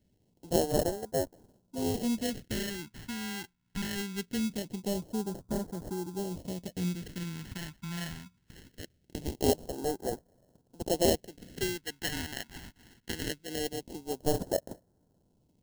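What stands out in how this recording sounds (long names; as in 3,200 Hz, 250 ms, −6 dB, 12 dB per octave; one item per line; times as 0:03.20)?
aliases and images of a low sample rate 1,200 Hz, jitter 0%
phaser sweep stages 2, 0.22 Hz, lowest notch 490–2,300 Hz
AAC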